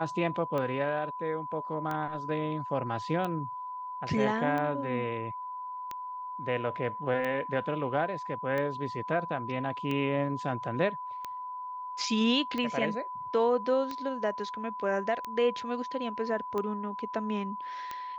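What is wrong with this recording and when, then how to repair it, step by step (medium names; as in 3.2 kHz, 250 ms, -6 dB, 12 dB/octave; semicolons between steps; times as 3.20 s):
tick 45 rpm -21 dBFS
whine 1 kHz -36 dBFS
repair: de-click; band-stop 1 kHz, Q 30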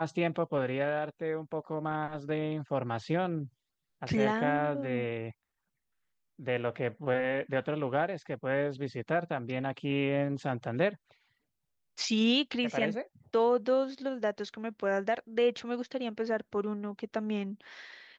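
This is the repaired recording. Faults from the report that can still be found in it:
nothing left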